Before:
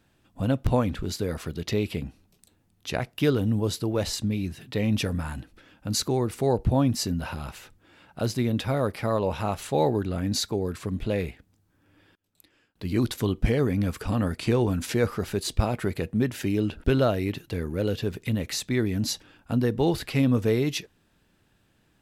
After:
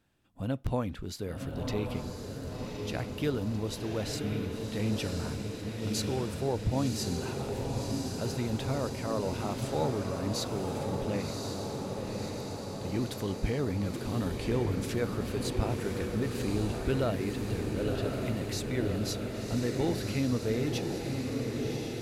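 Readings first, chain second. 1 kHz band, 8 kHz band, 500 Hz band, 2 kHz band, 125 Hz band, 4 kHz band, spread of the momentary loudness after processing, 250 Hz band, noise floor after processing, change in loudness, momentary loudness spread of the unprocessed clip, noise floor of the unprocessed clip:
-5.5 dB, -5.5 dB, -5.0 dB, -5.5 dB, -5.0 dB, -5.5 dB, 6 LU, -5.5 dB, -40 dBFS, -6.0 dB, 8 LU, -67 dBFS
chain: echo that smears into a reverb 1071 ms, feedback 72%, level -3.5 dB; trim -8 dB

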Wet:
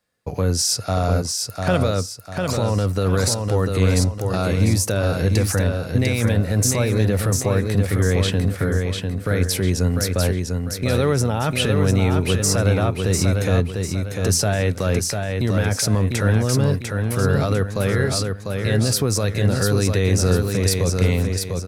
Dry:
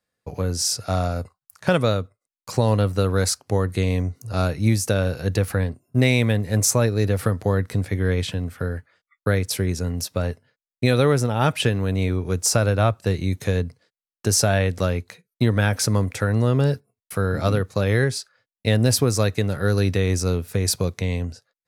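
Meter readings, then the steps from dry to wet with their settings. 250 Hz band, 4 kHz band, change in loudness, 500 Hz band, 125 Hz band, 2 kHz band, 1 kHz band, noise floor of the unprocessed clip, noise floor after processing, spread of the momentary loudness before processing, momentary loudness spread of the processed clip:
+2.5 dB, +3.0 dB, +2.0 dB, +1.5 dB, +2.5 dB, +1.0 dB, +0.5 dB, under -85 dBFS, -32 dBFS, 9 LU, 5 LU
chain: peak limiter -16 dBFS, peak gain reduction 10.5 dB; on a send: feedback delay 698 ms, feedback 38%, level -4.5 dB; on the sum: trim +5.5 dB

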